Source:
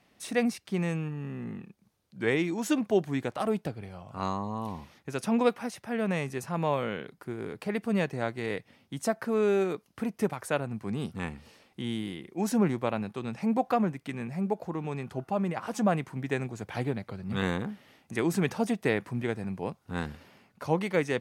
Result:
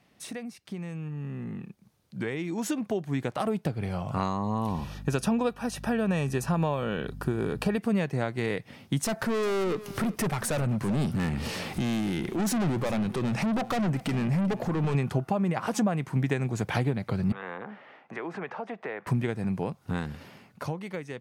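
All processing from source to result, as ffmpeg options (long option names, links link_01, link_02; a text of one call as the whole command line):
ffmpeg -i in.wav -filter_complex "[0:a]asettb=1/sr,asplit=3[link_01][link_02][link_03];[link_01]atrim=end=4.694[link_04];[link_02]atrim=start=4.69:end=7.78,asetpts=PTS-STARTPTS,afade=type=in:duration=0.004:curve=qsin,afade=type=out:start_time=3.086:duration=0.004:curve=qsin,aeval=exprs='val(0)+0.00251*(sin(2*PI*50*n/s)+sin(2*PI*2*50*n/s)/2+sin(2*PI*3*50*n/s)/3+sin(2*PI*4*50*n/s)/4+sin(2*PI*5*50*n/s)/5)':channel_layout=same,asuperstop=centerf=2100:order=12:qfactor=6.5[link_05];[link_03]atrim=start=7.776[link_06];[link_04][link_05]acrossfade=duration=0.004:curve1=hsin:curve2=qsin[link_07];[link_07][link_06]acrossfade=duration=0.004:curve1=qsin:curve2=hsin,asettb=1/sr,asplit=3[link_08][link_09][link_10];[link_08]atrim=end=9.044[link_11];[link_09]atrim=start=9.04:end=14.95,asetpts=PTS-STARTPTS,afade=type=in:duration=0.004:curve=qsin,afade=type=out:start_time=5.906:duration=0.004:curve=qsin,acompressor=mode=upward:threshold=-32dB:ratio=2.5:attack=3.2:release=140:knee=2.83:detection=peak,aeval=exprs='(tanh(63.1*val(0)+0.15)-tanh(0.15))/63.1':channel_layout=same,aecho=1:1:390:0.119,atrim=end_sample=260631[link_12];[link_10]atrim=start=14.946[link_13];[link_11][link_12]acrossfade=duration=0.004:curve1=hsin:curve2=qsin[link_14];[link_14][link_13]acrossfade=duration=0.004:curve1=qsin:curve2=hsin,asettb=1/sr,asplit=3[link_15][link_16][link_17];[link_15]atrim=end=17.324[link_18];[link_16]atrim=start=17.32:end=19.07,asetpts=PTS-STARTPTS,afade=type=in:duration=0.004:curve=qsin,afade=type=out:start_time=1.746:duration=0.004:curve=qsin,acrossover=split=460 2200:gain=0.141 1 0.224[link_19][link_20][link_21];[link_19][link_20][link_21]amix=inputs=3:normalize=0,acompressor=threshold=-47dB:ratio=3:attack=3.2:release=140:knee=1:detection=peak,highpass=160,lowpass=3100[link_22];[link_17]atrim=start=19.066[link_23];[link_18][link_22]acrossfade=duration=0.004:curve1=hsin:curve2=qsin[link_24];[link_24][link_23]acrossfade=duration=0.004:curve1=qsin:curve2=hsin,acompressor=threshold=-37dB:ratio=6,equalizer=frequency=140:width=1.5:gain=5,dynaudnorm=framelen=730:gausssize=7:maxgain=11.5dB" out.wav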